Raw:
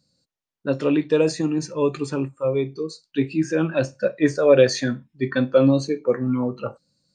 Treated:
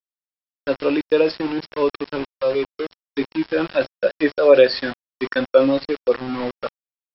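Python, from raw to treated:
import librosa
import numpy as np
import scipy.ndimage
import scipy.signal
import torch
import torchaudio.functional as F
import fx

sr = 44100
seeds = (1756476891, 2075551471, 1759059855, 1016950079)

y = scipy.signal.sosfilt(scipy.signal.butter(2, 350.0, 'highpass', fs=sr, output='sos'), x)
y = np.where(np.abs(y) >= 10.0 ** (-29.5 / 20.0), y, 0.0)
y = fx.brickwall_lowpass(y, sr, high_hz=5500.0)
y = y * 10.0 ** (3.5 / 20.0)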